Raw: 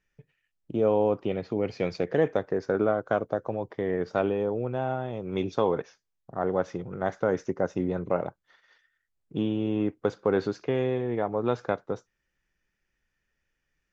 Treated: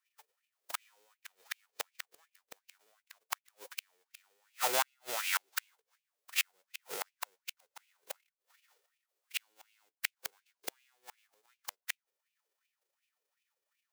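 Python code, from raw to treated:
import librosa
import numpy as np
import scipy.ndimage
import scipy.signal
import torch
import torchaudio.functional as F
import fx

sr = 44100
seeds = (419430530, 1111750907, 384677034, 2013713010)

y = fx.envelope_flatten(x, sr, power=0.1)
y = fx.filter_lfo_highpass(y, sr, shape='sine', hz=2.7, low_hz=410.0, high_hz=2600.0, q=4.9)
y = fx.gate_flip(y, sr, shuts_db=-15.0, range_db=-38)
y = fx.upward_expand(y, sr, threshold_db=-47.0, expansion=1.5)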